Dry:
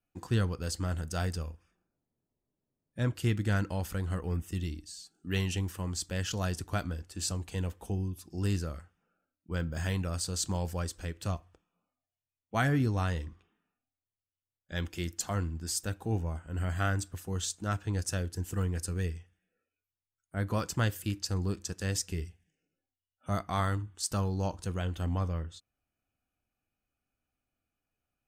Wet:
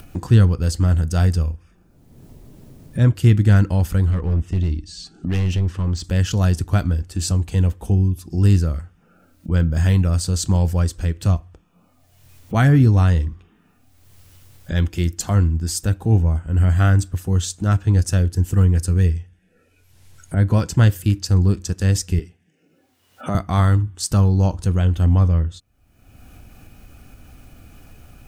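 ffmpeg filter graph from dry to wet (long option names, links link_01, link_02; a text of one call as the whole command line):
ffmpeg -i in.wav -filter_complex "[0:a]asettb=1/sr,asplit=3[link_01][link_02][link_03];[link_01]atrim=end=4.104[link_04];[link_02]atrim=start=4.1:end=6.04,asetpts=PTS-STARTPTS,afade=type=in:duration=0.004:curve=qsin,afade=type=out:start_time=1.936:duration=0.004:curve=qsin,lowpass=5000,asoftclip=type=hard:threshold=-32dB[link_05];[link_03]atrim=start=6.036[link_06];[link_04][link_05]acrossfade=duration=0.004:curve1=hsin:curve2=qsin[link_07];[link_07][link_06]acrossfade=duration=0.004:curve1=qsin:curve2=hsin,asettb=1/sr,asplit=3[link_08][link_09][link_10];[link_08]atrim=end=19.104[link_11];[link_09]atrim=start=19.1:end=20.81,asetpts=PTS-STARTPTS,afade=type=in:duration=0.004:curve=qsin,afade=type=out:start_time=1.706:duration=0.004:curve=qsin,lowpass=12000,bandreject=frequency=1200:width=8.2[link_12];[link_10]atrim=start=20.806[link_13];[link_11][link_12]acrossfade=duration=0.004:curve1=hsin:curve2=qsin[link_14];[link_14][link_13]acrossfade=duration=0.004:curve1=qsin:curve2=hsin,asettb=1/sr,asplit=3[link_15][link_16][link_17];[link_15]atrim=end=22.194[link_18];[link_16]atrim=start=22.19:end=23.35,asetpts=PTS-STARTPTS,afade=type=in:duration=0.004:curve=qsin,afade=type=out:start_time=1.156:duration=0.004:curve=qsin,highpass=230,highshelf=frequency=4200:gain=-8[link_19];[link_17]atrim=start=23.346[link_20];[link_18][link_19]acrossfade=duration=0.004:curve1=hsin:curve2=qsin[link_21];[link_21][link_20]acrossfade=duration=0.004:curve1=qsin:curve2=hsin,lowshelf=frequency=240:gain=12,acompressor=mode=upward:threshold=-27dB:ratio=2.5,volume=7dB" out.wav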